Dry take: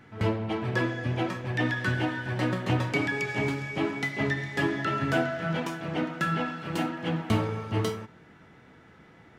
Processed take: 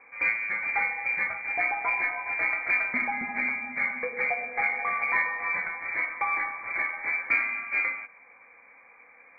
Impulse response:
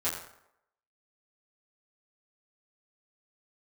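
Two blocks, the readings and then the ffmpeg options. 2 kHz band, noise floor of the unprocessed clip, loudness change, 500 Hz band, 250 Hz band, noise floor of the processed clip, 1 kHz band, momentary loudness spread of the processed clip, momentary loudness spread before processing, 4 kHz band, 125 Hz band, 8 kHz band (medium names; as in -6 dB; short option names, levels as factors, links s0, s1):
+6.5 dB, -54 dBFS, +2.0 dB, -9.5 dB, -16.5 dB, -55 dBFS, +1.5 dB, 4 LU, 5 LU, under -20 dB, under -25 dB, under -30 dB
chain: -af "lowpass=f=2100:t=q:w=0.5098,lowpass=f=2100:t=q:w=0.6013,lowpass=f=2100:t=q:w=0.9,lowpass=f=2100:t=q:w=2.563,afreqshift=-2500,aeval=exprs='0.237*(cos(1*acos(clip(val(0)/0.237,-1,1)))-cos(1*PI/2))+0.0015*(cos(4*acos(clip(val(0)/0.237,-1,1)))-cos(4*PI/2))':c=same"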